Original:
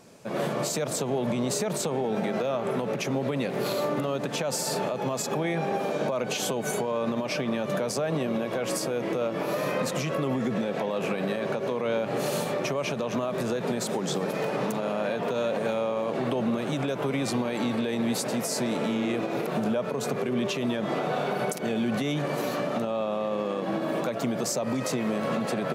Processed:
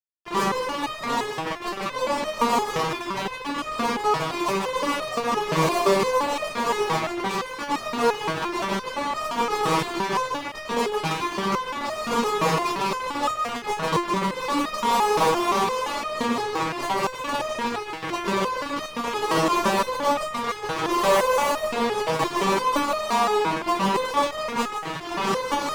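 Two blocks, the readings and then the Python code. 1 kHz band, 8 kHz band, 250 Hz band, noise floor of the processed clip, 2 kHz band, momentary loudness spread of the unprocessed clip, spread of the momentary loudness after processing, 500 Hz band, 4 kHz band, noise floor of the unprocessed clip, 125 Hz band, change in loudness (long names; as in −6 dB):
+11.0 dB, −0.5 dB, −1.0 dB, −35 dBFS, +6.5 dB, 2 LU, 8 LU, +1.5 dB, +6.0 dB, −32 dBFS, −2.0 dB, +4.0 dB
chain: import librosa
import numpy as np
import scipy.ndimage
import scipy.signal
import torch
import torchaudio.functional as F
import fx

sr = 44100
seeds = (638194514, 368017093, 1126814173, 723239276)

y = fx.formant_cascade(x, sr, vowel='a')
y = fx.spec_gate(y, sr, threshold_db=-15, keep='weak')
y = fx.fuzz(y, sr, gain_db=59.0, gate_db=-59.0)
y = y + 10.0 ** (-4.5 / 20.0) * np.pad(y, (int(154 * sr / 1000.0), 0))[:len(y)]
y = fx.resonator_held(y, sr, hz=5.8, low_hz=160.0, high_hz=620.0)
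y = y * 10.0 ** (8.5 / 20.0)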